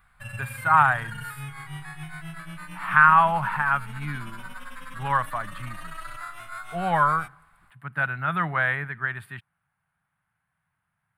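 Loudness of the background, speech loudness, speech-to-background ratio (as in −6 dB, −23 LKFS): −39.0 LKFS, −22.5 LKFS, 16.5 dB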